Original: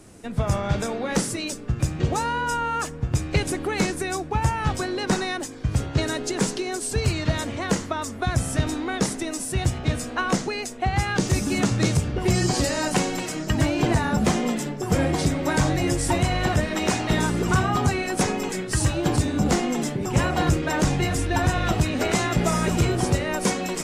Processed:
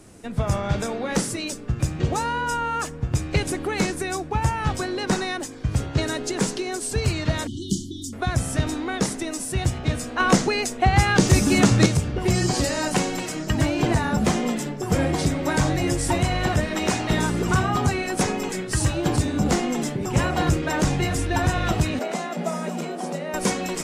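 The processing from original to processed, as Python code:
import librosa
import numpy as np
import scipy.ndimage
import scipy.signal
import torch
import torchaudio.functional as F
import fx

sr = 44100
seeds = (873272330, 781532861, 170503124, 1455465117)

y = fx.brickwall_bandstop(x, sr, low_hz=400.0, high_hz=2900.0, at=(7.47, 8.13))
y = fx.cheby_ripple_highpass(y, sr, hz=160.0, ripple_db=9, at=(21.99, 23.34))
y = fx.edit(y, sr, fx.clip_gain(start_s=10.2, length_s=1.66, db=5.5), tone=tone)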